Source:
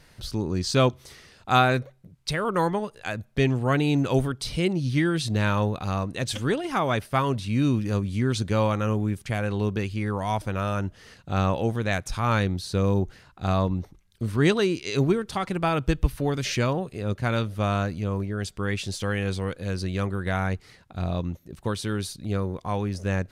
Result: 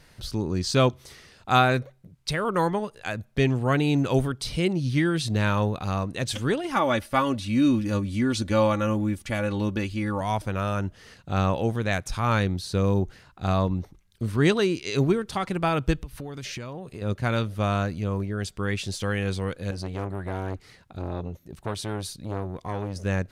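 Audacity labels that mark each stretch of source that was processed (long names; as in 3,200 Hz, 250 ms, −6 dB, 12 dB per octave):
6.750000	10.210000	comb filter 3.5 ms
16.010000	17.020000	downward compressor, threshold −32 dBFS
19.710000	22.960000	saturating transformer saturates under 760 Hz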